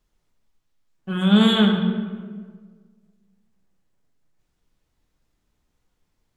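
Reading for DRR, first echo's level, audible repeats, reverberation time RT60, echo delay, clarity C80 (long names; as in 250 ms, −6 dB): 2.5 dB, no echo audible, no echo audible, 1.6 s, no echo audible, 6.5 dB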